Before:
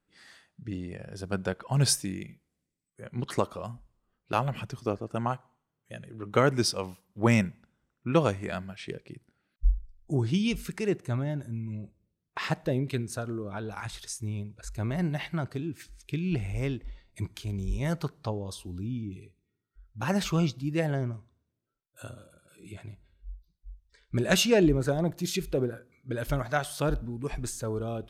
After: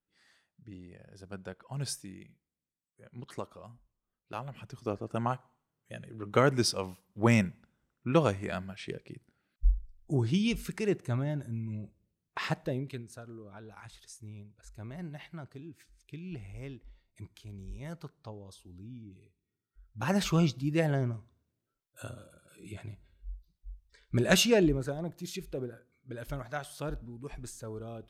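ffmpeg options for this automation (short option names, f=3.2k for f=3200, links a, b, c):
-af "volume=11dB,afade=t=in:st=4.57:d=0.52:silence=0.298538,afade=t=out:st=12.39:d=0.66:silence=0.281838,afade=t=in:st=19.17:d=1.14:silence=0.237137,afade=t=out:st=24.34:d=0.61:silence=0.354813"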